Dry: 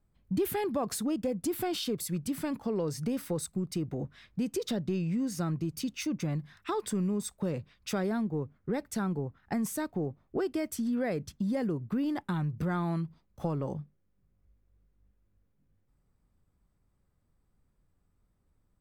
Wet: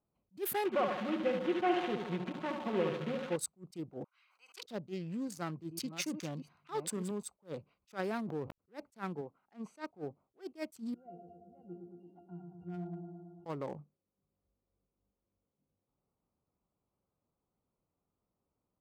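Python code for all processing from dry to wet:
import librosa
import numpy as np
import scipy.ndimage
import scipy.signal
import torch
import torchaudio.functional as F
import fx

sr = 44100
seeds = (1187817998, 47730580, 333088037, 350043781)

y = fx.chain(x, sr, fx.delta_mod(bps=16000, step_db=-38.0),
    fx.comb(ms=5.5, depth=0.73),
    fx.echo_feedback(ms=72, feedback_pct=58, wet_db=-5.0), at=(0.65, 3.36))
y = fx.chain(y, sr, fx.highpass(hz=1200.0, slope=24),
    fx.sustainer(db_per_s=46.0), at=(4.04, 4.63))
y = fx.chain(y, sr, fx.reverse_delay(ms=424, wet_db=-8.5),
    fx.highpass(hz=56.0, slope=24), at=(5.28, 7.11))
y = fx.chain(y, sr, fx.backlash(play_db=-48.5),
    fx.sustainer(db_per_s=25.0), at=(7.89, 8.58))
y = fx.chain(y, sr, fx.lowpass(hz=5800.0, slope=12),
    fx.peak_eq(hz=80.0, db=-13.0, octaves=1.5), at=(9.21, 9.91))
y = fx.chain(y, sr, fx.auto_swell(attack_ms=195.0),
    fx.octave_resonator(note='F', decay_s=0.29),
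    fx.echo_wet_lowpass(ms=112, feedback_pct=71, hz=1100.0, wet_db=-4), at=(10.94, 13.46))
y = fx.wiener(y, sr, points=25)
y = fx.highpass(y, sr, hz=830.0, slope=6)
y = fx.attack_slew(y, sr, db_per_s=330.0)
y = y * 10.0 ** (3.5 / 20.0)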